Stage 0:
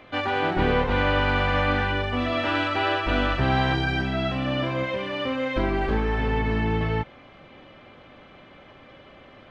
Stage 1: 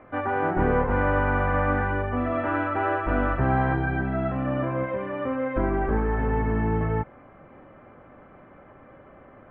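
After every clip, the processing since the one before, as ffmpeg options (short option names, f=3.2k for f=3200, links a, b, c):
-af "lowpass=f=1.7k:w=0.5412,lowpass=f=1.7k:w=1.3066"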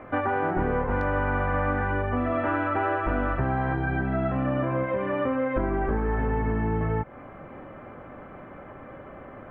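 -af "asoftclip=type=hard:threshold=-10dB,acompressor=threshold=-30dB:ratio=4,volume=6.5dB"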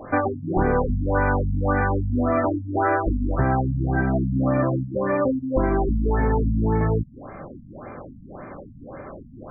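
-af "afftfilt=real='re*lt(b*sr/1024,250*pow(2600/250,0.5+0.5*sin(2*PI*1.8*pts/sr)))':imag='im*lt(b*sr/1024,250*pow(2600/250,0.5+0.5*sin(2*PI*1.8*pts/sr)))':win_size=1024:overlap=0.75,volume=5.5dB"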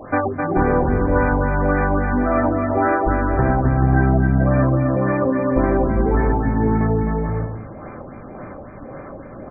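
-af "aecho=1:1:260|429|538.8|610.3|656.7:0.631|0.398|0.251|0.158|0.1,volume=2dB"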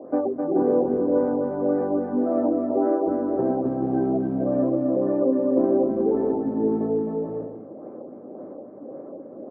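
-af "acrusher=bits=4:mode=log:mix=0:aa=0.000001,asuperpass=centerf=390:order=4:qfactor=1.1"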